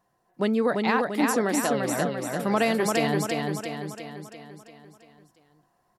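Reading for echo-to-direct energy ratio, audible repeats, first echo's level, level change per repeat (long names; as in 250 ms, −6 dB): −1.5 dB, 6, −3.0 dB, −5.5 dB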